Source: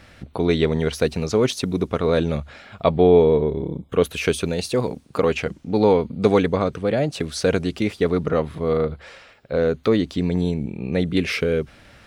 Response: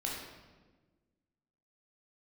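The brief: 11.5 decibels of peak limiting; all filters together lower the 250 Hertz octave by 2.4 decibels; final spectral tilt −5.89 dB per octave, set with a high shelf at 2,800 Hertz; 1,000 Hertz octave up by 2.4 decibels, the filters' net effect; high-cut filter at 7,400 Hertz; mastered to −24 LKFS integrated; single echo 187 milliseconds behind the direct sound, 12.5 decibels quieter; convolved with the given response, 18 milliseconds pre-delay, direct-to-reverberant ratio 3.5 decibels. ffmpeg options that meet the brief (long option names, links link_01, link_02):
-filter_complex "[0:a]lowpass=7400,equalizer=frequency=250:width_type=o:gain=-3.5,equalizer=frequency=1000:width_type=o:gain=4,highshelf=frequency=2800:gain=-4.5,alimiter=limit=-14.5dB:level=0:latency=1,aecho=1:1:187:0.237,asplit=2[link_01][link_02];[1:a]atrim=start_sample=2205,adelay=18[link_03];[link_02][link_03]afir=irnorm=-1:irlink=0,volume=-6.5dB[link_04];[link_01][link_04]amix=inputs=2:normalize=0,volume=-0.5dB"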